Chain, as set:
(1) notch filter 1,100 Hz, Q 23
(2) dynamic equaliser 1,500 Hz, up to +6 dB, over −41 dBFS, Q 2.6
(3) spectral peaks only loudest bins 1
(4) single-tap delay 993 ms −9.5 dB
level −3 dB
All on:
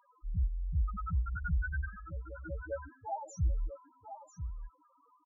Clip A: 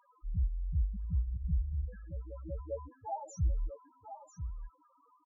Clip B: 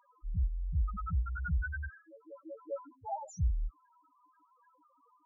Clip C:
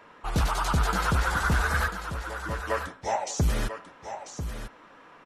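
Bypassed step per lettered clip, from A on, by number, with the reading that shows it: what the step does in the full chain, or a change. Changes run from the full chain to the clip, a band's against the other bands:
2, 2 kHz band −25.0 dB
4, change in momentary loudness spread −1 LU
3, 125 Hz band −8.5 dB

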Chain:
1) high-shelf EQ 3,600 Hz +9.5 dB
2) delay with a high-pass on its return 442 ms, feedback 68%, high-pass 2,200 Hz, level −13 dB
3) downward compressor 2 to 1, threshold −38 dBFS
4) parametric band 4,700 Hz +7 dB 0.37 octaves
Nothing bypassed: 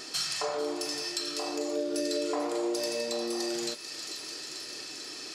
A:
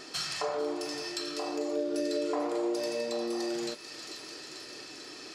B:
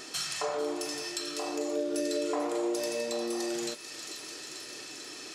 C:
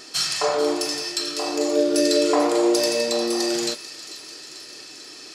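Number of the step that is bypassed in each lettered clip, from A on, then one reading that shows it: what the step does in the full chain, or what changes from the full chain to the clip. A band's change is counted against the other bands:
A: 1, 8 kHz band −6.5 dB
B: 4, 4 kHz band −4.0 dB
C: 3, average gain reduction 6.5 dB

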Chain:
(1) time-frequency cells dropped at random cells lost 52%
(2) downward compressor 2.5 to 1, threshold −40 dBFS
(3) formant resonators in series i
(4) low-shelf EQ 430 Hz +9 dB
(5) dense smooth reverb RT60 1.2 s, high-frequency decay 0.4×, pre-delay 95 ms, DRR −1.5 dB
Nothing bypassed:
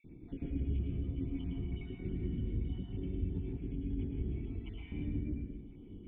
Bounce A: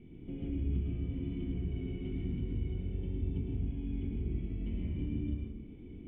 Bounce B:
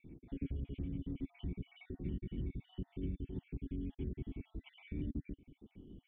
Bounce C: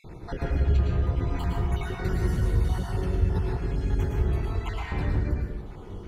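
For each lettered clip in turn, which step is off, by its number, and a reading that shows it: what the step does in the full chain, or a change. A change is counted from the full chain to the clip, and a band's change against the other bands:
1, change in momentary loudness spread −3 LU
5, change in momentary loudness spread +2 LU
3, 250 Hz band −9.0 dB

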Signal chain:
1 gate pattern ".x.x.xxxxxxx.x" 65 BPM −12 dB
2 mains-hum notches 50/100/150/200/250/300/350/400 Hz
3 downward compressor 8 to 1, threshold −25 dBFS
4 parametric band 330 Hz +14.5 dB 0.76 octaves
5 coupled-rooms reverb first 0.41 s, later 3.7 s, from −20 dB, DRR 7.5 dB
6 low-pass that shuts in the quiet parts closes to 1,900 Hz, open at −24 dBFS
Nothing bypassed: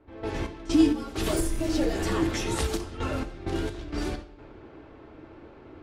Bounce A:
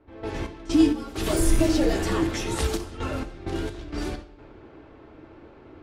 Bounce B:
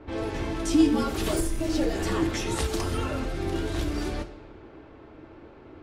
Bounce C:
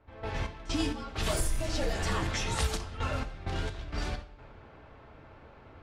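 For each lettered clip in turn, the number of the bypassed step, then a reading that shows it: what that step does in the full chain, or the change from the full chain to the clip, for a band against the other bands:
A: 3, change in crest factor −1.5 dB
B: 1, change in momentary loudness spread −14 LU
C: 4, 250 Hz band −11.0 dB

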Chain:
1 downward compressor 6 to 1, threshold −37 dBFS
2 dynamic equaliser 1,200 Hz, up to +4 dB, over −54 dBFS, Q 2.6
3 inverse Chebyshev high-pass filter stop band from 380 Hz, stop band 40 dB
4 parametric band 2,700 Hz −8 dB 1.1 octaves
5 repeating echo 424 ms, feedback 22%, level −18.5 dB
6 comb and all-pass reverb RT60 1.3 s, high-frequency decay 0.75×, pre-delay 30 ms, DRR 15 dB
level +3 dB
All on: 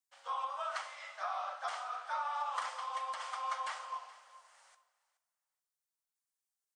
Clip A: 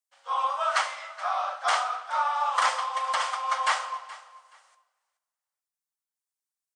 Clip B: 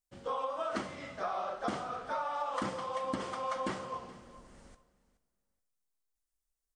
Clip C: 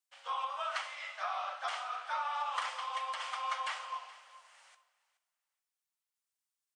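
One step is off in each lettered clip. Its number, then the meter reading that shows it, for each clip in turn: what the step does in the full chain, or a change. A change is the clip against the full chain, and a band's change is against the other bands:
1, average gain reduction 9.5 dB
3, 500 Hz band +11.5 dB
4, 4 kHz band +5.0 dB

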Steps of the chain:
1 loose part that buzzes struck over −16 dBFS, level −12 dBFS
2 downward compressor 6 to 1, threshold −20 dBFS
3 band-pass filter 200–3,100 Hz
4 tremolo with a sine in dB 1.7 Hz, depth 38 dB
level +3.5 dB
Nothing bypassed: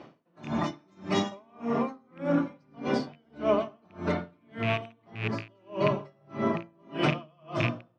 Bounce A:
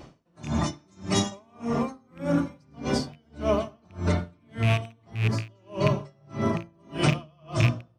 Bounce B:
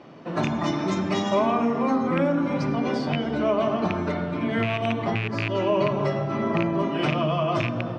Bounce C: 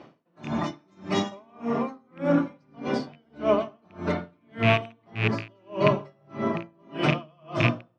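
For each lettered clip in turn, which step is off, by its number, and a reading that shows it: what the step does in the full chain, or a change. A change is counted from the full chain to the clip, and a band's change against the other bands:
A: 3, 125 Hz band +7.5 dB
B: 4, change in momentary loudness spread −8 LU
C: 2, average gain reduction 2.0 dB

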